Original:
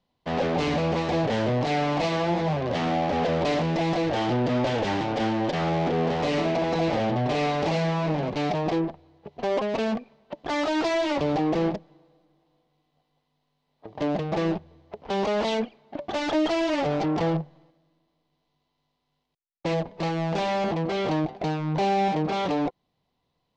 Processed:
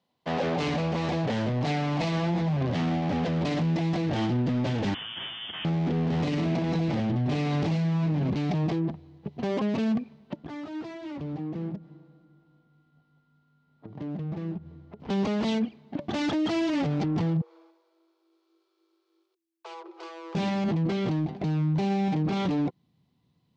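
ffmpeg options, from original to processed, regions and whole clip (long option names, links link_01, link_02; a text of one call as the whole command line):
ffmpeg -i in.wav -filter_complex "[0:a]asettb=1/sr,asplit=3[link_01][link_02][link_03];[link_01]atrim=end=4.944[link_04];[link_02]atrim=start=4.94:end=5.65,asetpts=PTS-STARTPTS,afade=type=in:duration=0.004:curve=qsin,afade=type=out:start_time=0.706:duration=0.004:curve=qsin,highpass=1000,equalizer=frequency=1600:width=1.4:gain=-8,lowpass=frequency=3200:width_type=q:width=0.5098,lowpass=frequency=3200:width_type=q:width=0.6013,lowpass=frequency=3200:width_type=q:width=0.9,lowpass=frequency=3200:width_type=q:width=2.563,afreqshift=-3800[link_05];[link_03]atrim=start=5.646[link_06];[link_04][link_05]acrossfade=duration=0.004:curve1=hsin:curve2=qsin[link_07];[link_07][link_06]acrossfade=duration=0.004:curve1=qsin:curve2=hsin,asettb=1/sr,asplit=3[link_08][link_09][link_10];[link_08]atrim=end=10.364[link_11];[link_09]atrim=start=10.36:end=15,asetpts=PTS-STARTPTS,afade=type=in:duration=0.004:curve=qsin,afade=type=out:start_time=4.636:duration=0.004:curve=qsin,highshelf=frequency=3100:gain=-9.5,acompressor=threshold=-44dB:ratio=2.5:attack=3.2:release=140:knee=1:detection=peak,aeval=exprs='val(0)+0.000282*sin(2*PI*1400*n/s)':channel_layout=same[link_12];[link_10]atrim=start=14.996[link_13];[link_11][link_12]acrossfade=duration=0.004:curve1=hsin:curve2=qsin[link_14];[link_14][link_13]acrossfade=duration=0.004:curve1=qsin:curve2=hsin,asettb=1/sr,asplit=3[link_15][link_16][link_17];[link_15]atrim=end=17.414[link_18];[link_16]atrim=start=17.41:end=20.35,asetpts=PTS-STARTPTS,afade=type=in:duration=0.004:curve=qsin,afade=type=out:start_time=2.936:duration=0.004:curve=qsin,asubboost=boost=6.5:cutoff=74,acompressor=threshold=-47dB:ratio=2:attack=3.2:release=140:knee=1:detection=peak,afreqshift=330[link_19];[link_17]atrim=start=20.346[link_20];[link_18][link_19]acrossfade=duration=0.004:curve1=hsin:curve2=qsin[link_21];[link_21][link_20]acrossfade=duration=0.004:curve1=qsin:curve2=hsin,highpass=150,asubboost=boost=9:cutoff=190,alimiter=limit=-20.5dB:level=0:latency=1:release=12" out.wav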